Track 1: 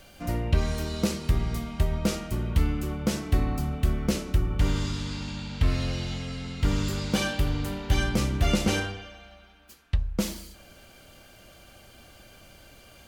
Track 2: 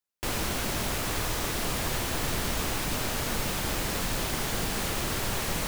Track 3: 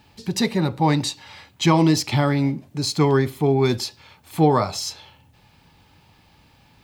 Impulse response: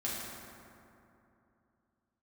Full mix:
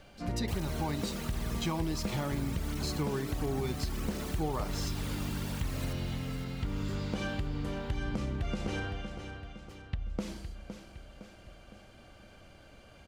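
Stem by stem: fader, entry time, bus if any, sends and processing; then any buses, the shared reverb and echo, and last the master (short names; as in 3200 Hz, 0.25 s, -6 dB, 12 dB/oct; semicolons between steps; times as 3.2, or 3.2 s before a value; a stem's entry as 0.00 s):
-2.5 dB, 0.00 s, no send, echo send -11 dB, LPF 10000 Hz 12 dB/oct; high shelf 3300 Hz -10 dB; compressor, threshold -25 dBFS, peak gain reduction 9 dB
-6.0 dB, 0.25 s, no send, echo send -10 dB, reverb removal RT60 1.8 s; tape flanging out of phase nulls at 1.4 Hz, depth 2.4 ms
-12.0 dB, 0.00 s, no send, no echo send, dry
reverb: off
echo: feedback echo 0.511 s, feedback 50%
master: compressor 3:1, threshold -30 dBFS, peak gain reduction 7 dB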